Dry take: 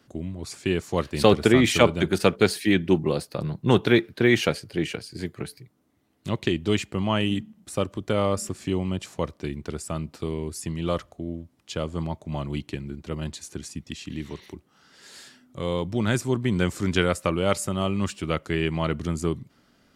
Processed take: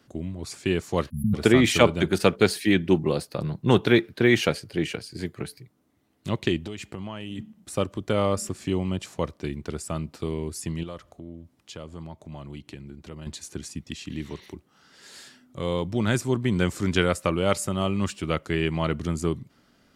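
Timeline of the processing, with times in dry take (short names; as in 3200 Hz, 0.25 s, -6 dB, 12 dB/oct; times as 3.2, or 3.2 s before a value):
1.1–1.34 spectral delete 240–9800 Hz
6.62–7.39 compressor 12:1, threshold -30 dBFS
10.83–13.27 compressor 2:1, threshold -42 dBFS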